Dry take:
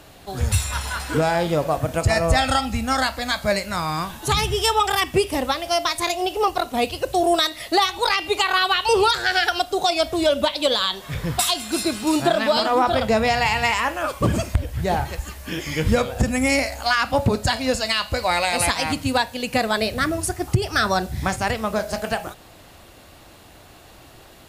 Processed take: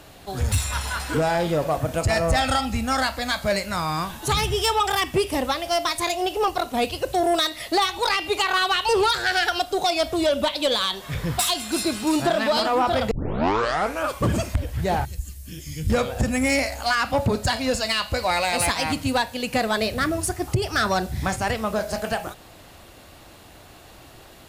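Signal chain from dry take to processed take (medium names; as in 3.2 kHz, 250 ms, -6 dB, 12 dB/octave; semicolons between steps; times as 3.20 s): 13.11 s: tape start 0.95 s; 15.05–15.90 s: FFT filter 110 Hz 0 dB, 940 Hz -26 dB, 8.3 kHz -1 dB; saturation -13.5 dBFS, distortion -16 dB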